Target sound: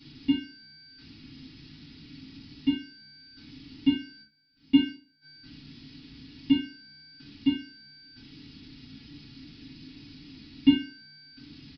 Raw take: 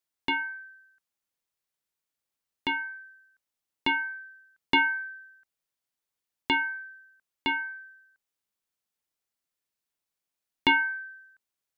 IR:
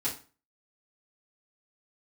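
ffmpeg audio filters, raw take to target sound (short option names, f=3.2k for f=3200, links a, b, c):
-filter_complex "[0:a]aeval=exprs='val(0)+0.5*0.0266*sgn(val(0))':c=same,aemphasis=mode=production:type=50kf,asplit=3[a][b][c];[a]afade=t=out:st=4.21:d=0.02[d];[b]agate=range=-17dB:threshold=-24dB:ratio=16:detection=peak,afade=t=in:st=4.21:d=0.02,afade=t=out:st=5.21:d=0.02[e];[c]afade=t=in:st=5.21:d=0.02[f];[d][e][f]amix=inputs=3:normalize=0,firequalizer=gain_entry='entry(110,0);entry(240,6);entry(530,-30);entry(2500,-16)':delay=0.05:min_phase=1[g];[1:a]atrim=start_sample=2205[h];[g][h]afir=irnorm=-1:irlink=0,aresample=11025,aresample=44100"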